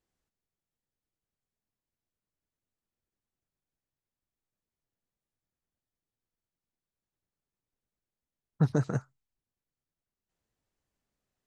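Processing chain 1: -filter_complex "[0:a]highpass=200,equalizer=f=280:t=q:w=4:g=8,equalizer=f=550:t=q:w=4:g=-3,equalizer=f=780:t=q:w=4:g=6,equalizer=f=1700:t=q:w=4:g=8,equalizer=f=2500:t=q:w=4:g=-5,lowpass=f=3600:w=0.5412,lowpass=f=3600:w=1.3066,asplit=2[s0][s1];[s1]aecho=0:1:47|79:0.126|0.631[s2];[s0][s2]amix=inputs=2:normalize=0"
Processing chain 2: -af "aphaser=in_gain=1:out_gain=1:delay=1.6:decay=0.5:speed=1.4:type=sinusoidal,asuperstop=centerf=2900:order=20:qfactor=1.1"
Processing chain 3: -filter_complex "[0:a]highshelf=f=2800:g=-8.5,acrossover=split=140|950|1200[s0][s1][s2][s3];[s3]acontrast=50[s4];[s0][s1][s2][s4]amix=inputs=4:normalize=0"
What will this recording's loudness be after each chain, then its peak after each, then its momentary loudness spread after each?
-30.5 LUFS, -26.5 LUFS, -30.5 LUFS; -13.0 dBFS, -7.5 dBFS, -14.0 dBFS; 11 LU, 11 LU, 7 LU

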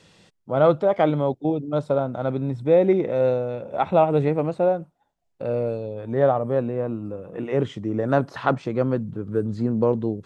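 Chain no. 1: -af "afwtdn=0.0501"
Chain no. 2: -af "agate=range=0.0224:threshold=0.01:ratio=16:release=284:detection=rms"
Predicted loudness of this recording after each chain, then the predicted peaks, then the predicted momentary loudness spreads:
-23.0 LUFS, -23.0 LUFS; -5.5 dBFS, -5.5 dBFS; 9 LU, 9 LU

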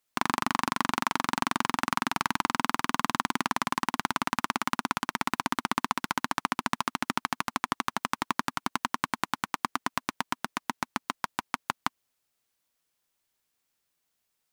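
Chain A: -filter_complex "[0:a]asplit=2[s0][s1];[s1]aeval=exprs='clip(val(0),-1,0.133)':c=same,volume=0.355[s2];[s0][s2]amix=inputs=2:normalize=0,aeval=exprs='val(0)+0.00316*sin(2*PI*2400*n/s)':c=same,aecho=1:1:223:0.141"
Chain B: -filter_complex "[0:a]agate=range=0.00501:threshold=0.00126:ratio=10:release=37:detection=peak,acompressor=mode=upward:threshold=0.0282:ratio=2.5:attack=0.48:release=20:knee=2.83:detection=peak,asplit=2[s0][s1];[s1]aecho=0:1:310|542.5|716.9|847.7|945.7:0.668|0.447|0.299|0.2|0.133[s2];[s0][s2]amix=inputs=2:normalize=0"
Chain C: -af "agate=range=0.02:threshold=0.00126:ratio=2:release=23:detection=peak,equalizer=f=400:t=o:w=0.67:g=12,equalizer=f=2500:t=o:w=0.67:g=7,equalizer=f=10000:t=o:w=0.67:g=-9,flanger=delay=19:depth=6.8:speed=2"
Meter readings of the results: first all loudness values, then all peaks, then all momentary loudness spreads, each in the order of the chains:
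-28.5 LUFS, -28.0 LUFS, -31.5 LUFS; -5.0 dBFS, -5.5 dBFS, -7.0 dBFS; 6 LU, 6 LU, 6 LU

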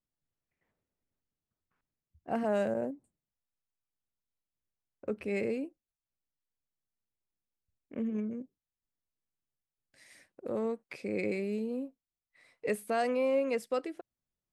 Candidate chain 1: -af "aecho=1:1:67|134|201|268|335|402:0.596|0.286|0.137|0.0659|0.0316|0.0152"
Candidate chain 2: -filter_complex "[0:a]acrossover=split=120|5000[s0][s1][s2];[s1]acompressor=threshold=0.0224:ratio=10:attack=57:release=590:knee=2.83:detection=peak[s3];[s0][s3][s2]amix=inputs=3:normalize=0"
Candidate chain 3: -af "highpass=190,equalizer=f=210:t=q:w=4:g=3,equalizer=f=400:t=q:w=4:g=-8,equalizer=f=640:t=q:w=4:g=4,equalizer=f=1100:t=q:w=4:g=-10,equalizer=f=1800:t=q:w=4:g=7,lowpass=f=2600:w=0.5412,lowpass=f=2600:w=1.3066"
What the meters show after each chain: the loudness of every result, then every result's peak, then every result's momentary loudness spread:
-33.0 LUFS, -38.0 LUFS, -34.5 LUFS; -17.5 dBFS, -21.5 dBFS, -20.0 dBFS; 16 LU, 11 LU, 17 LU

